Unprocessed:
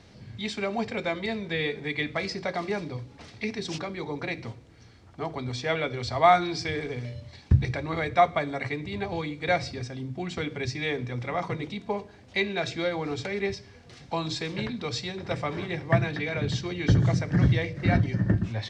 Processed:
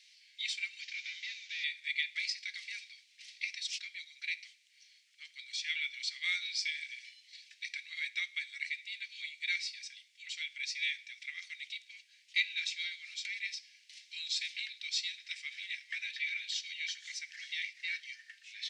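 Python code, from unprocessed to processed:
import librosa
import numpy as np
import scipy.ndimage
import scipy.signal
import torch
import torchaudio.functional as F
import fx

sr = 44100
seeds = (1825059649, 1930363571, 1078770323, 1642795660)

y = fx.delta_mod(x, sr, bps=32000, step_db=-41.5, at=(0.81, 1.64))
y = scipy.signal.sosfilt(scipy.signal.butter(8, 2100.0, 'highpass', fs=sr, output='sos'), y)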